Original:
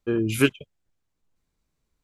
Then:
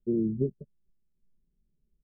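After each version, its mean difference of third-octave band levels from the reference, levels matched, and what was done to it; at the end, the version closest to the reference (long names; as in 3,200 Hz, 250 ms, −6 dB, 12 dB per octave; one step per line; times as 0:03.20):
10.0 dB: comb filter 5.1 ms, depth 94%
downward compressor 2.5 to 1, threshold −19 dBFS, peak gain reduction 6 dB
Gaussian smoothing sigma 22 samples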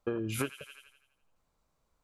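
6.5 dB: flat-topped bell 820 Hz +9 dB
on a send: delay with a high-pass on its return 84 ms, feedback 50%, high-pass 2,200 Hz, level −8.5 dB
on the sum: downward compressor 16 to 1, threshold −28 dBFS, peak gain reduction 18 dB
level −1.5 dB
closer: second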